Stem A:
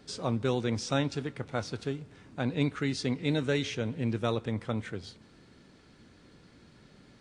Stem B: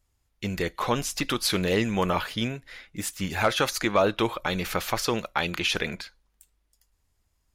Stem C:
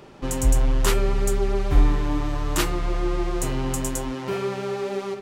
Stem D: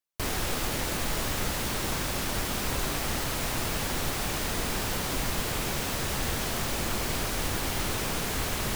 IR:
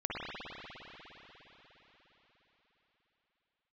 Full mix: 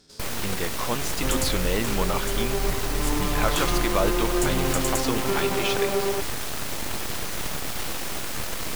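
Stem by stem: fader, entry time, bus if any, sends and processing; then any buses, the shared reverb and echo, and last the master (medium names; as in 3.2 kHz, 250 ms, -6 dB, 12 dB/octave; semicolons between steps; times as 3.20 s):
-0.5 dB, 0.00 s, no send, spectrogram pixelated in time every 100 ms; valve stage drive 39 dB, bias 0.75
-3.0 dB, 0.00 s, no send, none
-5.0 dB, 1.00 s, send -5.5 dB, compressor with a negative ratio -23 dBFS, ratio -1
+2.0 dB, 0.00 s, no send, full-wave rectifier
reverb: on, RT60 4.6 s, pre-delay 50 ms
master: none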